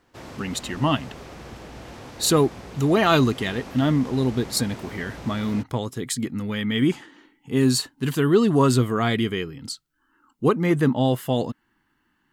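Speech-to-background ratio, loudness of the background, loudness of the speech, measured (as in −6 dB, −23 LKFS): 17.0 dB, −40.0 LKFS, −23.0 LKFS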